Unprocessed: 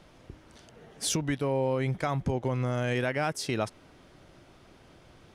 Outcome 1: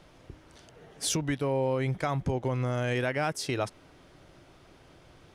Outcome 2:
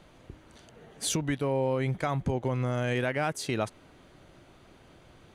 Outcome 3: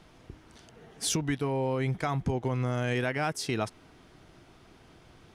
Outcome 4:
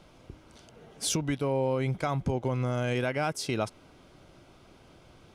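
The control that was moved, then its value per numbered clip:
band-stop, frequency: 220 Hz, 5.3 kHz, 560 Hz, 1.8 kHz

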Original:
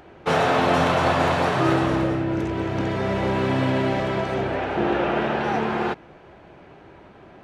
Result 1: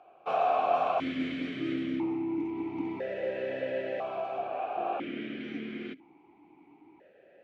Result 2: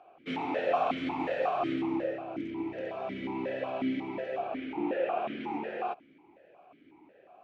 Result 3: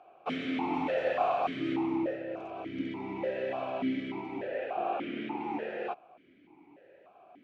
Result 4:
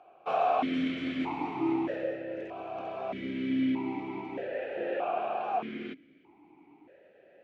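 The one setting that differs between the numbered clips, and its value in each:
stepped vowel filter, rate: 1 Hz, 5.5 Hz, 3.4 Hz, 1.6 Hz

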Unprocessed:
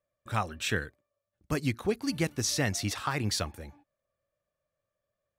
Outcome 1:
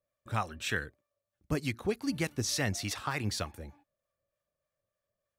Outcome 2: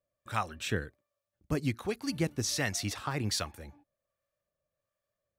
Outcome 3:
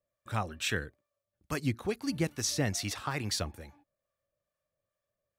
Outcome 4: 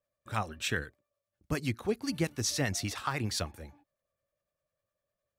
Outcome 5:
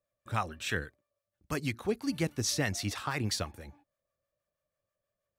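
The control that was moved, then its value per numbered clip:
harmonic tremolo, rate: 3.3 Hz, 1.3 Hz, 2.3 Hz, 9.9 Hz, 6.2 Hz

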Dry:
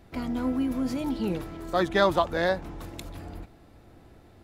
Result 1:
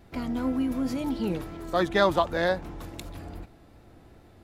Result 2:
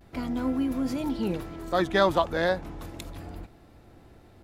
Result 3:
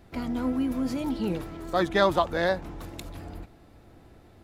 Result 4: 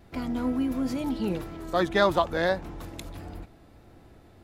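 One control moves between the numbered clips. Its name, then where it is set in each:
vibrato, rate: 2.7 Hz, 0.31 Hz, 9.7 Hz, 1.6 Hz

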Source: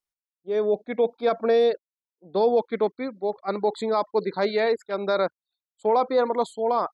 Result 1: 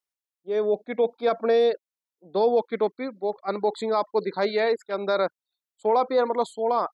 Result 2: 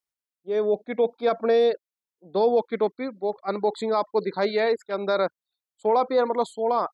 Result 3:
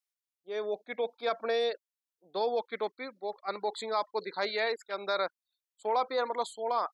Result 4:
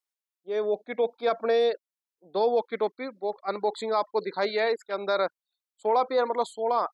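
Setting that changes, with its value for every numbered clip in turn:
high-pass, cutoff frequency: 160 Hz, 57 Hz, 1.5 kHz, 530 Hz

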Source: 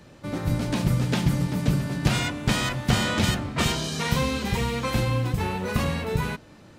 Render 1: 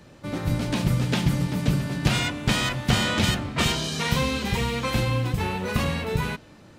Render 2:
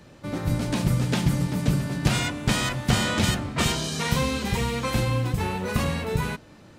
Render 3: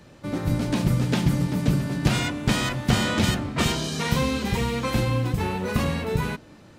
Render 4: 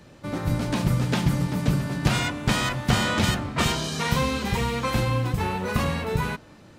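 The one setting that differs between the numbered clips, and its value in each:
dynamic bell, frequency: 3 kHz, 8.8 kHz, 290 Hz, 1.1 kHz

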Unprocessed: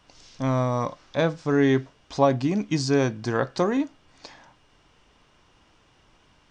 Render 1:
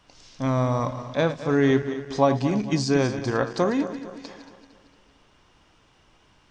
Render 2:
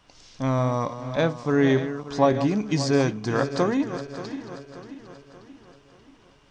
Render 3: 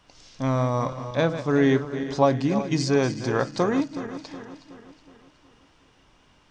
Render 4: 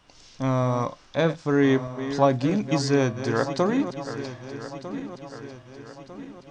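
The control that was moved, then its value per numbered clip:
backward echo that repeats, time: 114 ms, 291 ms, 185 ms, 625 ms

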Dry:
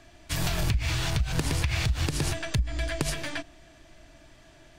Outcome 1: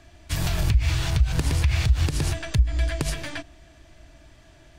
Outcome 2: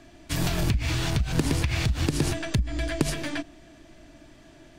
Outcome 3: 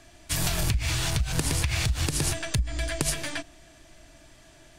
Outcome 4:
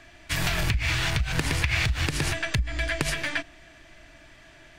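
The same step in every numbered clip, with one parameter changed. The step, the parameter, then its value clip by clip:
peaking EQ, frequency: 65 Hz, 270 Hz, 10 kHz, 2 kHz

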